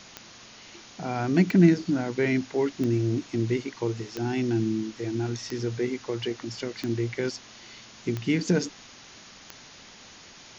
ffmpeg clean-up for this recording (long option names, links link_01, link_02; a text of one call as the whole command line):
ffmpeg -i in.wav -af "adeclick=threshold=4,afwtdn=0.0063" out.wav